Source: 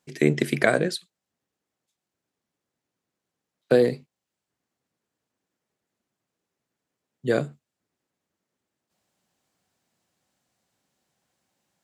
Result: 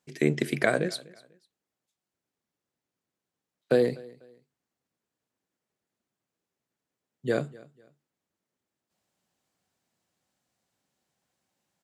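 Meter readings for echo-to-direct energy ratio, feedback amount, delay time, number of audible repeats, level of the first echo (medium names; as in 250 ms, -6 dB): -22.0 dB, 31%, 247 ms, 2, -22.5 dB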